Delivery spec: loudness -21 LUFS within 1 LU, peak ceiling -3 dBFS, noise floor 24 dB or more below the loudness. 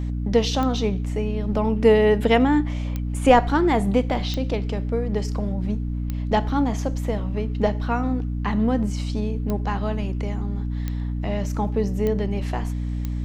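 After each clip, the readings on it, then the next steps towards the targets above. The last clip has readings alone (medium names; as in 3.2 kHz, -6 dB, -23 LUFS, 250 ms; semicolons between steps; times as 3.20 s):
clicks found 8; hum 60 Hz; highest harmonic 300 Hz; hum level -24 dBFS; loudness -23.0 LUFS; peak level -1.5 dBFS; loudness target -21.0 LUFS
-> de-click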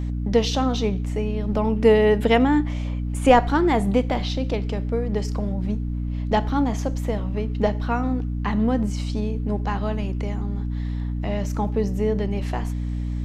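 clicks found 0; hum 60 Hz; highest harmonic 300 Hz; hum level -24 dBFS
-> de-hum 60 Hz, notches 5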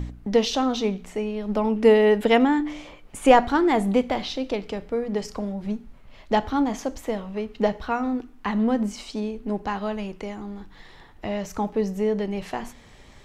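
hum not found; loudness -24.0 LUFS; peak level -1.5 dBFS; loudness target -21.0 LUFS
-> trim +3 dB; peak limiter -3 dBFS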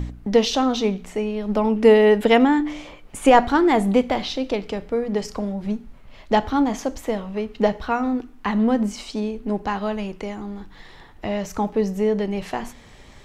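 loudness -21.5 LUFS; peak level -3.0 dBFS; noise floor -46 dBFS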